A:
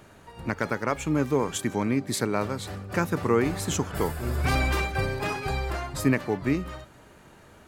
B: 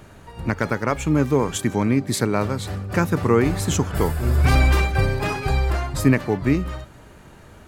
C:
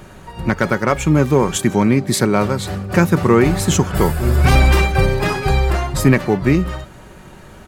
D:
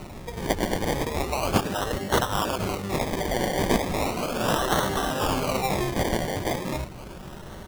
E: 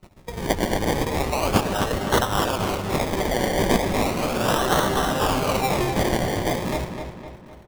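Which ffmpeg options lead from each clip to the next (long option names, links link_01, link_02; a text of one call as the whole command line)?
ffmpeg -i in.wav -af "lowshelf=frequency=130:gain=8.5,volume=4dB" out.wav
ffmpeg -i in.wav -filter_complex "[0:a]aecho=1:1:5.4:0.33,asplit=2[link_01][link_02];[link_02]volume=10.5dB,asoftclip=hard,volume=-10.5dB,volume=-3dB[link_03];[link_01][link_03]amix=inputs=2:normalize=0,volume=1dB" out.wav
ffmpeg -i in.wav -af "afftfilt=real='re*lt(hypot(re,im),0.398)':imag='im*lt(hypot(re,im),0.398)':win_size=1024:overlap=0.75,acrusher=samples=26:mix=1:aa=0.000001:lfo=1:lforange=15.6:lforate=0.36" out.wav
ffmpeg -i in.wav -filter_complex "[0:a]agate=range=-30dB:threshold=-36dB:ratio=16:detection=peak,asplit=2[link_01][link_02];[link_02]adelay=255,lowpass=frequency=4400:poles=1,volume=-7dB,asplit=2[link_03][link_04];[link_04]adelay=255,lowpass=frequency=4400:poles=1,volume=0.5,asplit=2[link_05][link_06];[link_06]adelay=255,lowpass=frequency=4400:poles=1,volume=0.5,asplit=2[link_07][link_08];[link_08]adelay=255,lowpass=frequency=4400:poles=1,volume=0.5,asplit=2[link_09][link_10];[link_10]adelay=255,lowpass=frequency=4400:poles=1,volume=0.5,asplit=2[link_11][link_12];[link_12]adelay=255,lowpass=frequency=4400:poles=1,volume=0.5[link_13];[link_01][link_03][link_05][link_07][link_09][link_11][link_13]amix=inputs=7:normalize=0,volume=2.5dB" out.wav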